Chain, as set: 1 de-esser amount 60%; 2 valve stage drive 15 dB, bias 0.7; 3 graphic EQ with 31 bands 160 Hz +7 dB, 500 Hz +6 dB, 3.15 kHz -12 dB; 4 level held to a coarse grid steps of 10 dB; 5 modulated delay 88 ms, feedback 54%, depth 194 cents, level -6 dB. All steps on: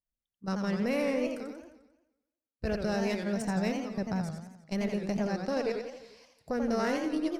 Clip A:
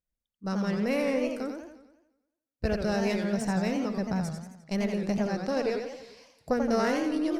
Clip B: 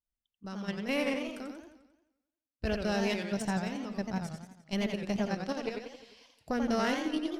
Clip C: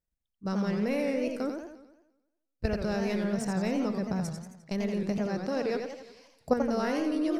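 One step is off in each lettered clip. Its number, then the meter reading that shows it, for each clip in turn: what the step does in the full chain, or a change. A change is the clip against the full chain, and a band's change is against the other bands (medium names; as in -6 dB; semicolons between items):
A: 4, momentary loudness spread change -2 LU; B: 3, 4 kHz band +4.5 dB; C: 2, crest factor change +2.0 dB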